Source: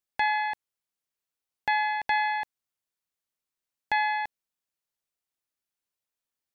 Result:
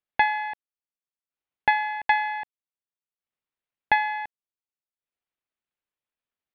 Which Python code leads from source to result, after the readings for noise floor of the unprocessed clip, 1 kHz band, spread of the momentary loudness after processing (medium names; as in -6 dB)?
under -85 dBFS, +2.0 dB, 14 LU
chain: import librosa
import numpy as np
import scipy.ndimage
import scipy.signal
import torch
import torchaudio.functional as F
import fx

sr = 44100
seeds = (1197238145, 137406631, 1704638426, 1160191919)

y = scipy.signal.sosfilt(scipy.signal.butter(4, 3400.0, 'lowpass', fs=sr, output='sos'), x)
y = fx.transient(y, sr, attack_db=8, sustain_db=-10)